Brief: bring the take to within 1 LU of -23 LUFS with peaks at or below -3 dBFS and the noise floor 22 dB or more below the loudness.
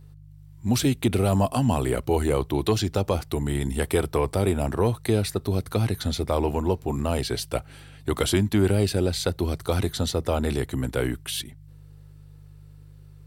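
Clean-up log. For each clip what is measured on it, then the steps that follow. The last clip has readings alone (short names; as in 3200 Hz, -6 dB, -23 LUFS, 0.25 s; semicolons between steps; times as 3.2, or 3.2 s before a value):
hum 50 Hz; harmonics up to 150 Hz; hum level -46 dBFS; loudness -25.0 LUFS; peak -10.0 dBFS; loudness target -23.0 LUFS
-> de-hum 50 Hz, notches 3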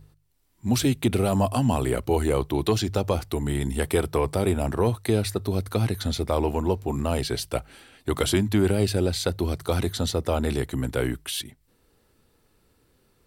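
hum none; loudness -25.5 LUFS; peak -10.0 dBFS; loudness target -23.0 LUFS
-> gain +2.5 dB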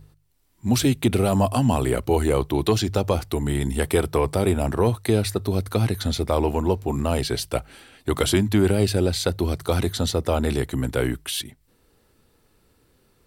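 loudness -23.0 LUFS; peak -7.5 dBFS; noise floor -63 dBFS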